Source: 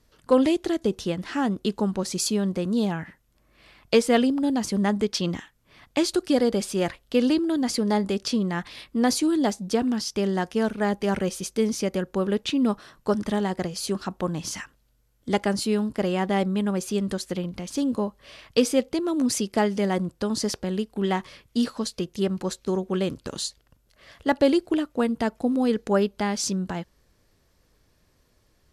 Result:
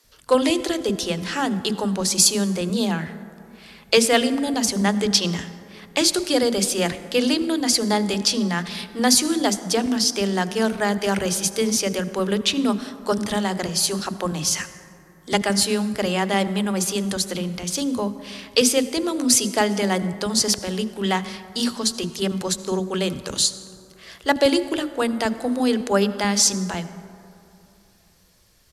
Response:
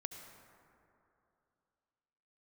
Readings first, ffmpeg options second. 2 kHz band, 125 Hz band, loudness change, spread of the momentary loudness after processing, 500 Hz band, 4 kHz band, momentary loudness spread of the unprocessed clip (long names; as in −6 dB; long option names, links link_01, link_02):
+6.5 dB, +2.0 dB, +4.0 dB, 9 LU, +2.0 dB, +10.0 dB, 8 LU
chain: -filter_complex "[0:a]highshelf=frequency=2500:gain=10,acrossover=split=310[link_01][link_02];[link_01]adelay=40[link_03];[link_03][link_02]amix=inputs=2:normalize=0,asplit=2[link_04][link_05];[1:a]atrim=start_sample=2205[link_06];[link_05][link_06]afir=irnorm=-1:irlink=0,volume=-1.5dB[link_07];[link_04][link_07]amix=inputs=2:normalize=0,volume=-1dB"